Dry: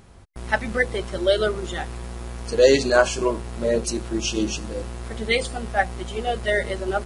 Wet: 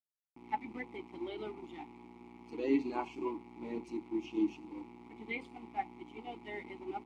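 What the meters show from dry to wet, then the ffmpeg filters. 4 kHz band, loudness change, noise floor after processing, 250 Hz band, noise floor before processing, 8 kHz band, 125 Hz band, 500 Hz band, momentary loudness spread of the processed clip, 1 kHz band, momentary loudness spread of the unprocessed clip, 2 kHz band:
-26.5 dB, -17.0 dB, -77 dBFS, -8.5 dB, -43 dBFS, under -35 dB, -26.0 dB, -21.0 dB, 17 LU, -13.0 dB, 15 LU, -21.5 dB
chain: -filter_complex "[0:a]aeval=exprs='sgn(val(0))*max(abs(val(0))-0.0178,0)':c=same,asplit=3[s0][s1][s2];[s0]bandpass=f=300:t=q:w=8,volume=1[s3];[s1]bandpass=f=870:t=q:w=8,volume=0.501[s4];[s2]bandpass=f=2240:t=q:w=8,volume=0.355[s5];[s3][s4][s5]amix=inputs=3:normalize=0,acrossover=split=2900[s6][s7];[s7]acompressor=threshold=0.00126:ratio=4:attack=1:release=60[s8];[s6][s8]amix=inputs=2:normalize=0"

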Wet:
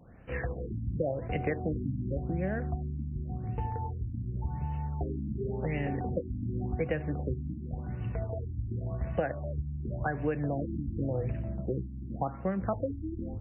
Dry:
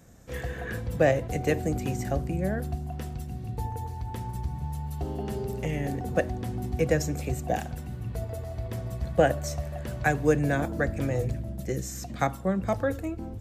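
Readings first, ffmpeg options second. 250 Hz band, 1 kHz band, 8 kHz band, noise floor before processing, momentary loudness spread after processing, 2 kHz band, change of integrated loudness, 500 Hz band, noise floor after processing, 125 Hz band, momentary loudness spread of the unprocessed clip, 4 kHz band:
-4.0 dB, -6.5 dB, under -40 dB, -38 dBFS, 5 LU, -9.0 dB, -4.5 dB, -7.0 dB, -41 dBFS, -2.5 dB, 11 LU, under -10 dB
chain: -af "acompressor=threshold=0.0447:ratio=6,highshelf=f=2700:g=8.5,afftfilt=real='re*lt(b*sr/1024,310*pow(3100/310,0.5+0.5*sin(2*PI*0.9*pts/sr)))':imag='im*lt(b*sr/1024,310*pow(3100/310,0.5+0.5*sin(2*PI*0.9*pts/sr)))':win_size=1024:overlap=0.75"

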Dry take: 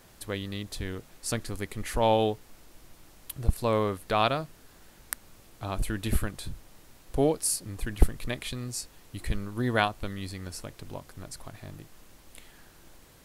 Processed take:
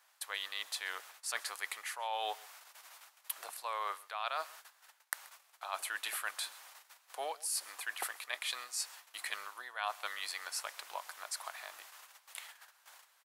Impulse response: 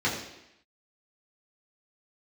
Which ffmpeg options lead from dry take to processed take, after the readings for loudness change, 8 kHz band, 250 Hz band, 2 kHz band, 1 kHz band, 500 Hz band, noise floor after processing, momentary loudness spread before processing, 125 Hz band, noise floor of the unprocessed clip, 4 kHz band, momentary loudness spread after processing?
-9.5 dB, -4.5 dB, -37.0 dB, -2.5 dB, -7.5 dB, -18.0 dB, -69 dBFS, 17 LU, under -40 dB, -56 dBFS, -2.5 dB, 17 LU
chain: -af "agate=range=0.178:threshold=0.00316:ratio=16:detection=peak,highpass=f=800:w=0.5412,highpass=f=800:w=1.3066,equalizer=f=1300:w=0.62:g=3,areverse,acompressor=threshold=0.0126:ratio=12,areverse,aecho=1:1:131:0.0794,volume=1.58"

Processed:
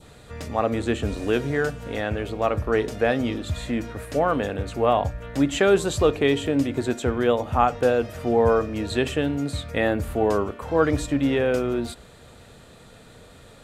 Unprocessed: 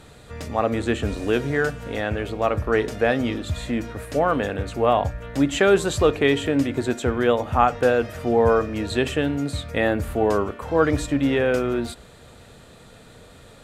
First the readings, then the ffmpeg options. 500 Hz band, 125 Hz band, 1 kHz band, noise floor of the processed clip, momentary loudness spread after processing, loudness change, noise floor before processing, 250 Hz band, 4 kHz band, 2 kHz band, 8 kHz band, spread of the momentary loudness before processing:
-1.0 dB, -1.0 dB, -1.5 dB, -48 dBFS, 9 LU, -1.5 dB, -47 dBFS, -1.0 dB, -1.5 dB, -3.0 dB, -1.0 dB, 9 LU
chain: -af "adynamicequalizer=threshold=0.0141:dfrequency=1700:dqfactor=1.3:tfrequency=1700:tqfactor=1.3:attack=5:release=100:ratio=0.375:range=3:mode=cutabove:tftype=bell,volume=0.891"

